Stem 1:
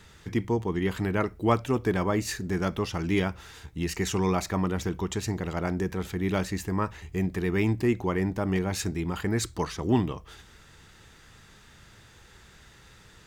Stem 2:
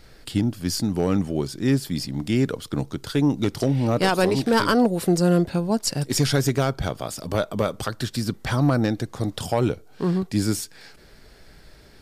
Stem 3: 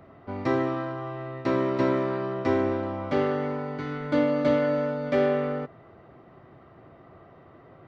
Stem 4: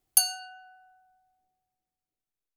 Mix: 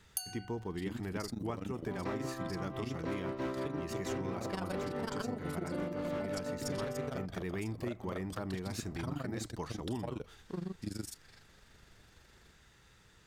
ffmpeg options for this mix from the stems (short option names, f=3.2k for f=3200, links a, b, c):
-filter_complex "[0:a]volume=-9.5dB[a];[1:a]tremolo=f=24:d=0.919,adelay=500,volume=-12dB[b];[2:a]tremolo=f=5.9:d=0.64,volume=24dB,asoftclip=hard,volume=-24dB,adelay=1600,volume=-3.5dB[c];[3:a]volume=-8.5dB[d];[a][b][c][d]amix=inputs=4:normalize=0,acompressor=threshold=-34dB:ratio=6"